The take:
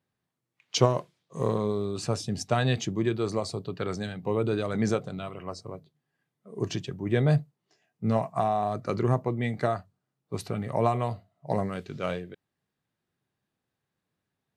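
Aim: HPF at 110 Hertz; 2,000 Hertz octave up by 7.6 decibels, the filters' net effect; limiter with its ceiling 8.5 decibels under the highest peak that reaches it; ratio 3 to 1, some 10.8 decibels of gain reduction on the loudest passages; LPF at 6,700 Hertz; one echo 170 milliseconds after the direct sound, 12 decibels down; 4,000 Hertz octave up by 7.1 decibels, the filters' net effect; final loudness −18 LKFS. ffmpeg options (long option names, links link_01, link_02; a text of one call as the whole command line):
ffmpeg -i in.wav -af "highpass=110,lowpass=6700,equalizer=frequency=2000:width_type=o:gain=8,equalizer=frequency=4000:width_type=o:gain=7,acompressor=threshold=-30dB:ratio=3,alimiter=limit=-23.5dB:level=0:latency=1,aecho=1:1:170:0.251,volume=18dB" out.wav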